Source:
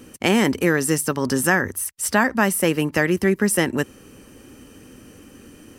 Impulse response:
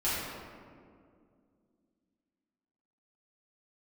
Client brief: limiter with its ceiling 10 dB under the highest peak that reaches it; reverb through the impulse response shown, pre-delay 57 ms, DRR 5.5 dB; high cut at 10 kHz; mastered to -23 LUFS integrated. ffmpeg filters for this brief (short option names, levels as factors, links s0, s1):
-filter_complex "[0:a]lowpass=10000,alimiter=limit=0.224:level=0:latency=1,asplit=2[s0][s1];[1:a]atrim=start_sample=2205,adelay=57[s2];[s1][s2]afir=irnorm=-1:irlink=0,volume=0.178[s3];[s0][s3]amix=inputs=2:normalize=0,volume=1.06"